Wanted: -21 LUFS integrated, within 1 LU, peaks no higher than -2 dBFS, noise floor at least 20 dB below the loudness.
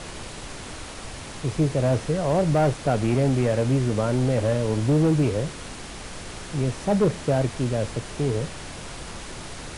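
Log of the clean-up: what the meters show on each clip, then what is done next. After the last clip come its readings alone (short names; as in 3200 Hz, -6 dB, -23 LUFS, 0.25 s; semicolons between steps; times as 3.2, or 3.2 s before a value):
clipped 1.1%; flat tops at -14.5 dBFS; noise floor -38 dBFS; noise floor target -44 dBFS; loudness -23.5 LUFS; peak -14.5 dBFS; loudness target -21.0 LUFS
-> clip repair -14.5 dBFS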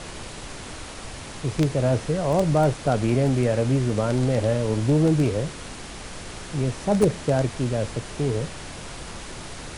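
clipped 0.0%; noise floor -38 dBFS; noise floor target -44 dBFS
-> noise print and reduce 6 dB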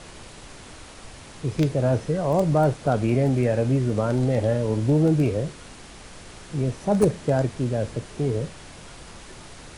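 noise floor -44 dBFS; loudness -23.5 LUFS; peak -5.5 dBFS; loudness target -21.0 LUFS
-> gain +2.5 dB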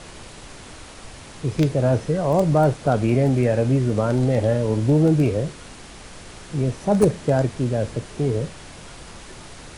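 loudness -21.0 LUFS; peak -3.0 dBFS; noise floor -41 dBFS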